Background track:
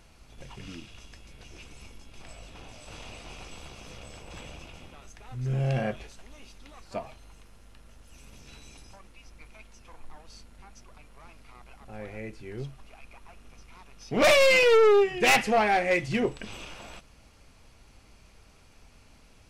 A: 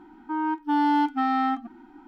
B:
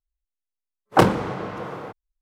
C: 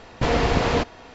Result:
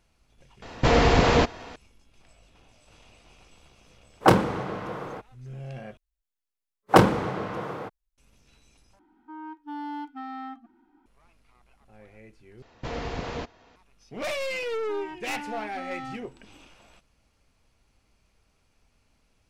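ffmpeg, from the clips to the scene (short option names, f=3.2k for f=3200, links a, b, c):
-filter_complex "[3:a]asplit=2[a][b];[2:a]asplit=2[c][d];[1:a]asplit=2[e][f];[0:a]volume=-11.5dB[g];[a]acontrast=77[h];[b]aresample=16000,aresample=44100[i];[f]aeval=exprs='(tanh(17.8*val(0)+0.2)-tanh(0.2))/17.8':c=same[j];[g]asplit=4[k][l][m][n];[k]atrim=end=5.974[o];[d]atrim=end=2.21,asetpts=PTS-STARTPTS,volume=-0.5dB[p];[l]atrim=start=8.176:end=8.994[q];[e]atrim=end=2.07,asetpts=PTS-STARTPTS,volume=-13.5dB[r];[m]atrim=start=11.056:end=12.624[s];[i]atrim=end=1.14,asetpts=PTS-STARTPTS,volume=-12.5dB[t];[n]atrim=start=13.756[u];[h]atrim=end=1.14,asetpts=PTS-STARTPTS,volume=-4.5dB,afade=t=in:d=0.004:c=hsin,afade=t=out:st=1.136:d=0.004:c=hsin,adelay=620[v];[c]atrim=end=2.21,asetpts=PTS-STARTPTS,volume=-2dB,afade=t=in:d=0.004:c=hsin,afade=t=out:st=2.206:d=0.004:c=hsin,adelay=145089S[w];[j]atrim=end=2.07,asetpts=PTS-STARTPTS,volume=-9.5dB,afade=t=in:d=0.004:c=hsin,afade=t=out:st=2.066:d=0.004:c=hsin,adelay=643860S[x];[o][p]acrossfade=d=0.004:c1=hsin:c2=hsin[y];[y][q]acrossfade=d=0.004:c1=hsin:c2=hsin[z];[z][r]acrossfade=d=0.004:c1=hsin:c2=hsin[aa];[aa][s]acrossfade=d=0.004:c1=hsin:c2=hsin[ab];[ab][t]acrossfade=d=0.004:c1=hsin:c2=hsin[ac];[ac][u]acrossfade=d=0.004:c1=hsin:c2=hsin[ad];[ad][v][w][x]amix=inputs=4:normalize=0"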